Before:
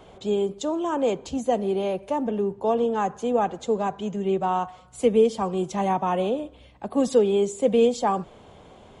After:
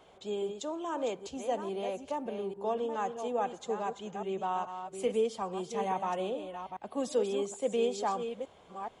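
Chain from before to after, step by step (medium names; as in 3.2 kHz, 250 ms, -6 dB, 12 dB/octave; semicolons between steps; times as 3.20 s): chunks repeated in reverse 423 ms, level -8 dB; bass shelf 320 Hz -10.5 dB; trim -7 dB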